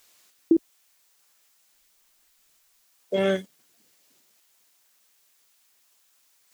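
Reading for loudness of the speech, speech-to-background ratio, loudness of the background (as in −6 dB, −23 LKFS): −27.0 LKFS, −1.5 dB, −25.5 LKFS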